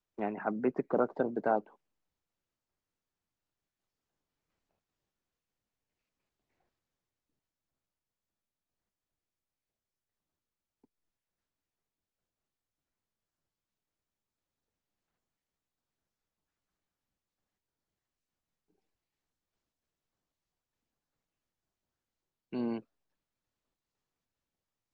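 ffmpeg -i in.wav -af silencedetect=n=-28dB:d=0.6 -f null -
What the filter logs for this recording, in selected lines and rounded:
silence_start: 1.59
silence_end: 22.56 | silence_duration: 20.98
silence_start: 22.73
silence_end: 24.94 | silence_duration: 2.21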